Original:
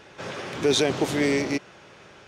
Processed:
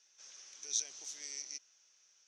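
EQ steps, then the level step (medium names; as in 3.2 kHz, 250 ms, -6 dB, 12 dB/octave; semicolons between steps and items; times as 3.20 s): band-pass filter 6 kHz, Q 9.8; +1.5 dB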